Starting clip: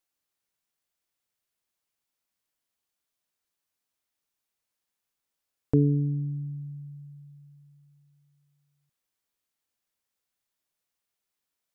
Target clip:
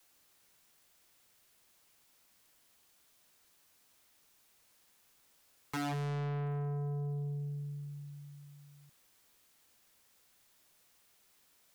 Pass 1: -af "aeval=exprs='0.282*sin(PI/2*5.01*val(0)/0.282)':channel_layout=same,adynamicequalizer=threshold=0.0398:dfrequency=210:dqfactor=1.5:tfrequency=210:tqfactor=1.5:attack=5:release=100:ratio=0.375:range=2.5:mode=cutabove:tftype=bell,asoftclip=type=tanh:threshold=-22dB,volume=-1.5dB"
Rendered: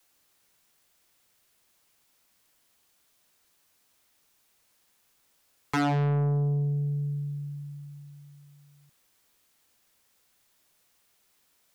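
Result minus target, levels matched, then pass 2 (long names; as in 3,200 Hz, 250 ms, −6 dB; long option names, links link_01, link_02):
soft clipping: distortion −6 dB
-af "aeval=exprs='0.282*sin(PI/2*5.01*val(0)/0.282)':channel_layout=same,adynamicequalizer=threshold=0.0398:dfrequency=210:dqfactor=1.5:tfrequency=210:tqfactor=1.5:attack=5:release=100:ratio=0.375:range=2.5:mode=cutabove:tftype=bell,asoftclip=type=tanh:threshold=-33.5dB,volume=-1.5dB"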